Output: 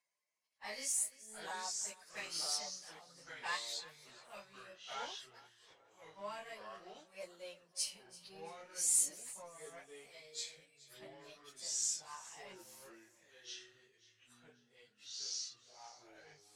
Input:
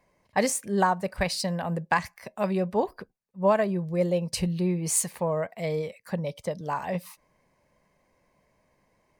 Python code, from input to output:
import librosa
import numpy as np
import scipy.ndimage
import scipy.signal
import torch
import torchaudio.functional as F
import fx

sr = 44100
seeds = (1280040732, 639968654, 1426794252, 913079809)

y = fx.pitch_ramps(x, sr, semitones=1.5, every_ms=803)
y = scipy.signal.sosfilt(scipy.signal.butter(2, 84.0, 'highpass', fs=sr, output='sos'), y)
y = np.diff(y, prepend=0.0)
y = fx.leveller(y, sr, passes=1)
y = fx.stretch_vocoder_free(y, sr, factor=1.8)
y = scipy.signal.sosfilt(scipy.signal.butter(2, 8300.0, 'lowpass', fs=sr, output='sos'), y)
y = fx.echo_feedback(y, sr, ms=337, feedback_pct=36, wet_db=-19)
y = fx.echo_pitch(y, sr, ms=558, semitones=-4, count=2, db_per_echo=-6.0)
y = F.gain(torch.from_numpy(y), -3.5).numpy()